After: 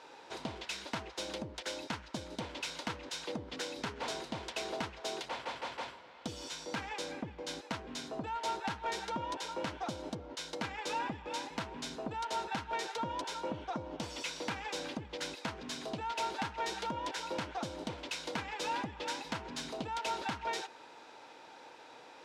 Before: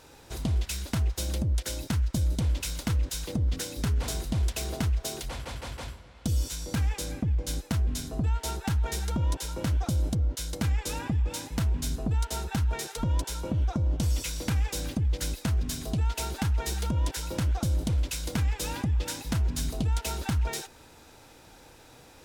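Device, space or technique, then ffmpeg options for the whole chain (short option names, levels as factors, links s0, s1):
intercom: -af "highpass=380,lowpass=4100,equalizer=f=920:t=o:w=0.21:g=6,asoftclip=type=tanh:threshold=0.0398,volume=1.12"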